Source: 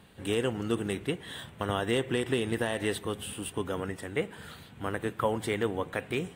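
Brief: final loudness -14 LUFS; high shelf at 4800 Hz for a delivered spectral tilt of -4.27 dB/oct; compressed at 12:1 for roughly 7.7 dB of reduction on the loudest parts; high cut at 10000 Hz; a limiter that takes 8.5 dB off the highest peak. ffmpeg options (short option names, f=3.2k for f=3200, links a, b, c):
-af "lowpass=10k,highshelf=f=4.8k:g=5,acompressor=threshold=-31dB:ratio=12,volume=25dB,alimiter=limit=-1dB:level=0:latency=1"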